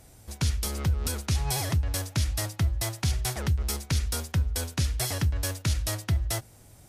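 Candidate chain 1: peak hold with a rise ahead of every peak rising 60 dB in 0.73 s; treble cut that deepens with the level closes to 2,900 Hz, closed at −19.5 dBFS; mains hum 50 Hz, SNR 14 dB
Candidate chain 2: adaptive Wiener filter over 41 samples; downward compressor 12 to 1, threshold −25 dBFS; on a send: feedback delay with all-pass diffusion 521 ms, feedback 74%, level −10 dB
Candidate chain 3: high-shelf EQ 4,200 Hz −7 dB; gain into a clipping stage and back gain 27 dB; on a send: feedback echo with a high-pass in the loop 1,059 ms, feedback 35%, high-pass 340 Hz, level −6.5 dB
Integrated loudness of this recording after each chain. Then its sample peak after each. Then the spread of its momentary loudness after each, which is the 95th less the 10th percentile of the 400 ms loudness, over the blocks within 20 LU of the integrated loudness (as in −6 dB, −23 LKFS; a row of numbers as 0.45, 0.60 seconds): −27.5, −31.0, −32.5 LKFS; −11.5, −15.5, −22.5 dBFS; 2, 3, 2 LU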